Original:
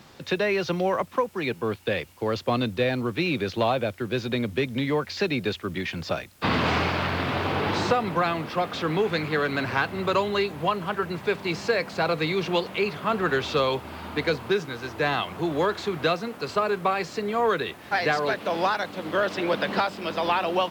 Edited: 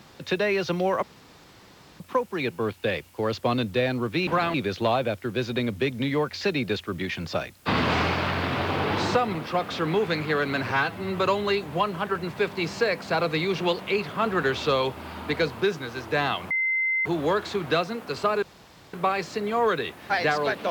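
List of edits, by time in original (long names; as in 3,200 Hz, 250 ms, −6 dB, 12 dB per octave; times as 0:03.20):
0:01.03: splice in room tone 0.97 s
0:08.11–0:08.38: move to 0:03.30
0:09.74–0:10.05: time-stretch 1.5×
0:15.38: insert tone 2,070 Hz −21.5 dBFS 0.55 s
0:16.75: splice in room tone 0.51 s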